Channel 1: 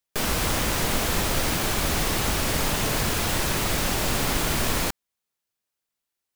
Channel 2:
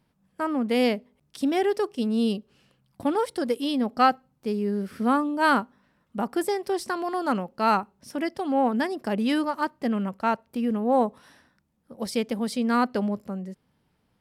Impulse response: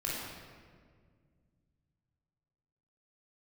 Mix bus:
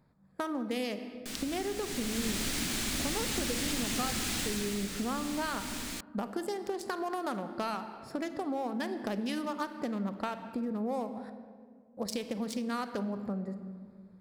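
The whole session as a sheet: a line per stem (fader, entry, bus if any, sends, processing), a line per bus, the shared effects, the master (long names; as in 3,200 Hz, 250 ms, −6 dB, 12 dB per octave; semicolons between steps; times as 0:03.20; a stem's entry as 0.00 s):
0:01.77 −19 dB → 0:02.31 −7.5 dB → 0:04.40 −7.5 dB → 0:04.96 −17.5 dB, 1.10 s, no send, graphic EQ with 10 bands 125 Hz −4 dB, 250 Hz +11 dB, 500 Hz −6 dB, 1,000 Hz −4 dB, 2,000 Hz +4 dB, 4,000 Hz +5 dB, 8,000 Hz +7 dB
+1.0 dB, 0.00 s, muted 0:11.30–0:11.97, send −13 dB, adaptive Wiener filter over 15 samples; high-shelf EQ 2,700 Hz +11.5 dB; downward compressor 6 to 1, threshold −31 dBFS, peak gain reduction 17 dB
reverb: on, RT60 1.9 s, pre-delay 20 ms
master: downward compressor 2 to 1, threshold −33 dBFS, peak gain reduction 6.5 dB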